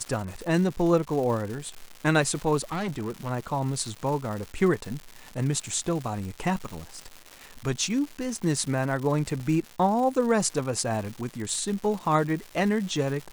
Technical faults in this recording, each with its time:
crackle 310 per s -33 dBFS
2.72–3.30 s: clipped -26.5 dBFS
9.40 s: dropout 3.5 ms

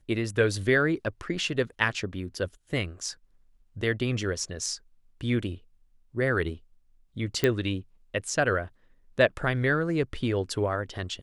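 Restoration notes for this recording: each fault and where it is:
7.44 s: pop -10 dBFS

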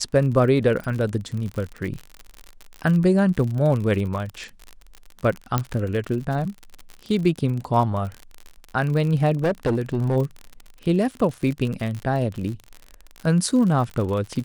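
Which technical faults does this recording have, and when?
crackle 53 per s -28 dBFS
5.58 s: pop -7 dBFS
9.43–10.17 s: clipped -17 dBFS

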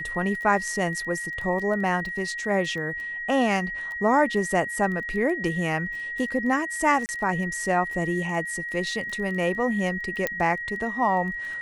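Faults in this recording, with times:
crackle 12 per s -32 dBFS
whine 1.9 kHz -30 dBFS
7.06–7.09 s: dropout 29 ms
10.27 s: pop -10 dBFS

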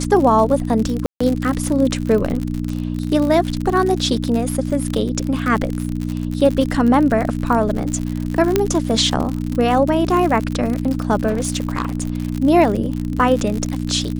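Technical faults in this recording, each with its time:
crackle 63 per s -21 dBFS
hum 60 Hz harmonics 5 -23 dBFS
1.06–1.21 s: dropout 145 ms
8.56 s: pop -1 dBFS
11.28–12.18 s: clipped -15 dBFS

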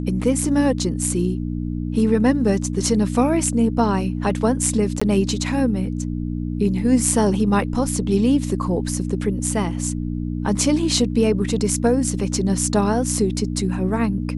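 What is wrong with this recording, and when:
hum 60 Hz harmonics 5 -25 dBFS
5.00–5.01 s: dropout 15 ms

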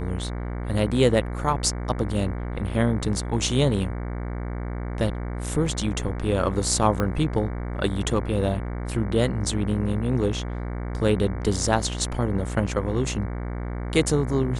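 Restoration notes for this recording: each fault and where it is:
buzz 60 Hz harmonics 38 -30 dBFS
7.00 s: pop -12 dBFS

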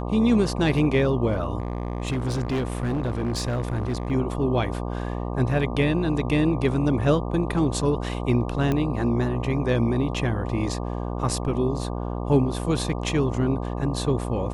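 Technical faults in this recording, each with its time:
buzz 60 Hz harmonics 20 -29 dBFS
1.58–4.12 s: clipped -21.5 dBFS
8.72 s: pop -13 dBFS

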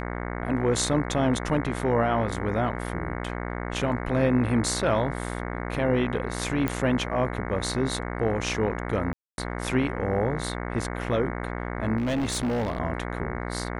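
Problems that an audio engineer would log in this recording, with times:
buzz 60 Hz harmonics 37 -32 dBFS
6.68 s: pop -13 dBFS
9.13–9.38 s: dropout 251 ms
11.97–12.80 s: clipped -23 dBFS

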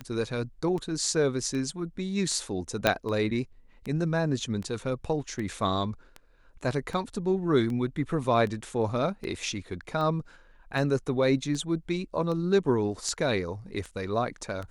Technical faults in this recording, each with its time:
tick 78 rpm -24 dBFS
2.87 s: pop -6 dBFS

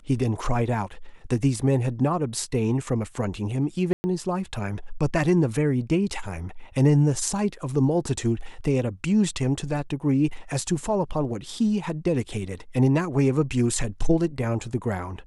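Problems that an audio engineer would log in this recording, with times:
3.93–4.04 s: dropout 110 ms

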